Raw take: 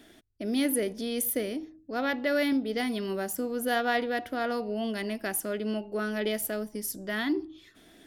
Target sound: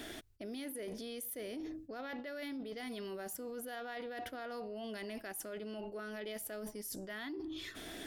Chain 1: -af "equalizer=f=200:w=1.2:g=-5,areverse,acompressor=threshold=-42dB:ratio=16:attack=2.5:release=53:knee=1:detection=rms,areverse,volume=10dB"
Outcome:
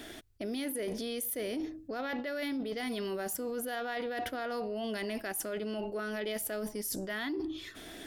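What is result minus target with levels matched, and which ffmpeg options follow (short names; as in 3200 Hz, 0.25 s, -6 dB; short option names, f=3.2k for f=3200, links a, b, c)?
compressor: peak gain reduction -7.5 dB
-af "equalizer=f=200:w=1.2:g=-5,areverse,acompressor=threshold=-50dB:ratio=16:attack=2.5:release=53:knee=1:detection=rms,areverse,volume=10dB"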